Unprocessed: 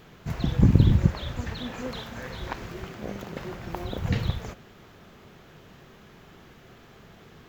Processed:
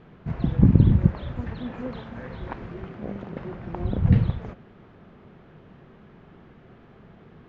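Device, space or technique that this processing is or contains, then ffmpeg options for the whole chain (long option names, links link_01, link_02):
phone in a pocket: -filter_complex "[0:a]lowpass=3300,equalizer=frequency=200:width_type=o:width=1.4:gain=3.5,highshelf=frequency=2300:gain=-10.5,asettb=1/sr,asplit=3[link_01][link_02][link_03];[link_01]atrim=end=3.784[link_04];[link_02]atrim=start=3.78:end=4.24,asetpts=PTS-STARTPTS,afade=type=in:duration=0.004:curve=qsin,afade=type=out:start_time=0.456:duration=0.004:curve=qsin,bass=frequency=250:gain=8,treble=frequency=4000:gain=1[link_05];[link_03]atrim=start=4.236[link_06];[link_04][link_05]acrossfade=duration=0.004:curve1=hsin:curve2=qsin[link_07];[link_07][link_06]acrossfade=duration=0.004:curve1=qsin:curve2=hsin"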